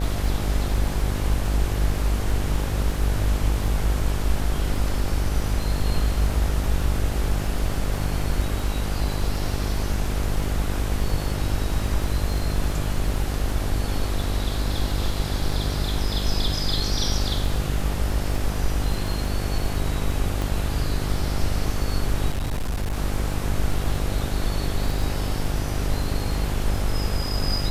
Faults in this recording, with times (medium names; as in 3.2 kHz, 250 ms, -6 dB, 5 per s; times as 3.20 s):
buzz 50 Hz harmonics 17 -27 dBFS
crackle 14 per s
20.42 s: pop
22.32–22.99 s: clipped -21.5 dBFS